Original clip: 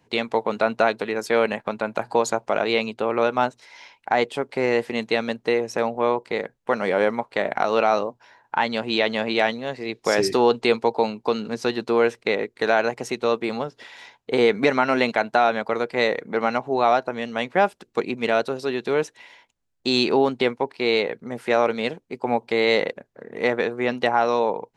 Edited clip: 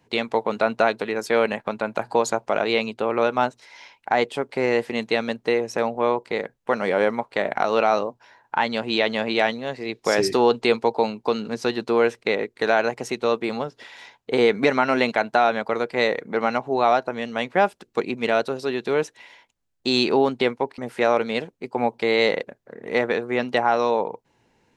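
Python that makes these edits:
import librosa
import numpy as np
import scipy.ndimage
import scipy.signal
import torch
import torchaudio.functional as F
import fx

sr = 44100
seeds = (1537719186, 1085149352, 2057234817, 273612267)

y = fx.edit(x, sr, fx.cut(start_s=20.78, length_s=0.49), tone=tone)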